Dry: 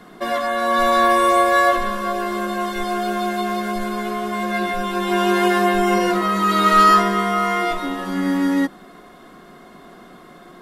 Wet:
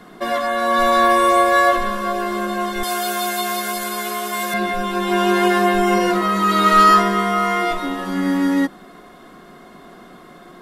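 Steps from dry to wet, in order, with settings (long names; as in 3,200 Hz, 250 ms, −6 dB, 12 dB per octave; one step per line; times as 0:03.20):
0:02.83–0:04.54: RIAA equalisation recording
level +1 dB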